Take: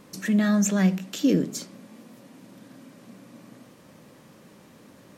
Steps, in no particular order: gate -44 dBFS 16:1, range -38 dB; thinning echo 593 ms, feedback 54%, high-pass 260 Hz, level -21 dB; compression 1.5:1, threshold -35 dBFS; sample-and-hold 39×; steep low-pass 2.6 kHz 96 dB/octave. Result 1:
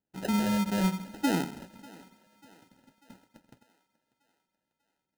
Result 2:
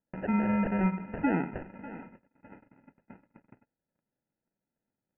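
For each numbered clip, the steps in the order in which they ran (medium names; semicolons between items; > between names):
steep low-pass > compression > gate > sample-and-hold > thinning echo; sample-and-hold > thinning echo > compression > gate > steep low-pass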